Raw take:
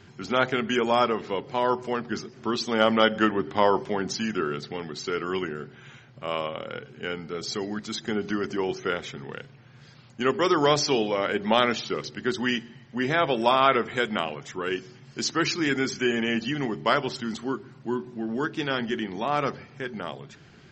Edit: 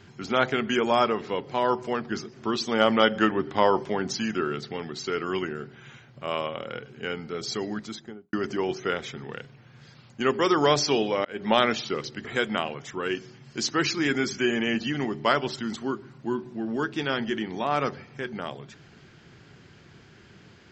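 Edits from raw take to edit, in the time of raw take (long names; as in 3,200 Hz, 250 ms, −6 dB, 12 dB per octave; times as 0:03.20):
0:07.70–0:08.33: fade out and dull
0:11.25–0:11.50: fade in
0:12.25–0:13.86: remove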